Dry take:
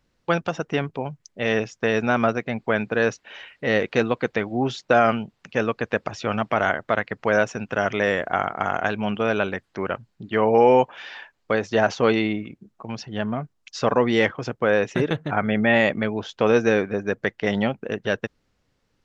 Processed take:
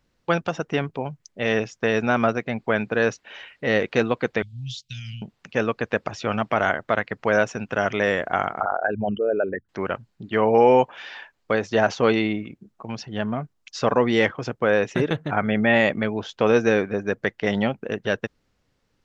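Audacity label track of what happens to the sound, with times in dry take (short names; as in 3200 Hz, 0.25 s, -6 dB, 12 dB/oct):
4.420000	5.220000	elliptic band-stop 130–3200 Hz, stop band 50 dB
8.600000	9.690000	formant sharpening exponent 3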